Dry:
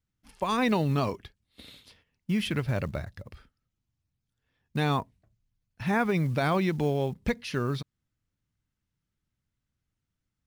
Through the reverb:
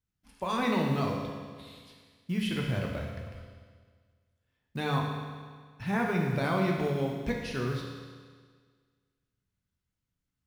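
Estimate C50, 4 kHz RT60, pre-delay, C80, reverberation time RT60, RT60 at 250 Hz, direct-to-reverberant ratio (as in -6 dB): 2.0 dB, 1.6 s, 10 ms, 4.0 dB, 1.7 s, 1.7 s, -0.5 dB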